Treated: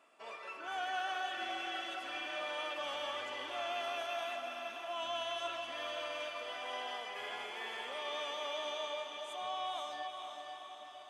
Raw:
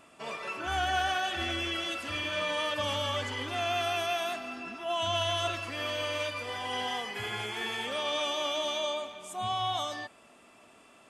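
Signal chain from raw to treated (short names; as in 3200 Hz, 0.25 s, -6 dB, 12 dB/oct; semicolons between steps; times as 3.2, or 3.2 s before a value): HPF 440 Hz 12 dB/oct; high shelf 4600 Hz -8.5 dB; diffused feedback echo 0.495 s, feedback 59%, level -5.5 dB; gain -7.5 dB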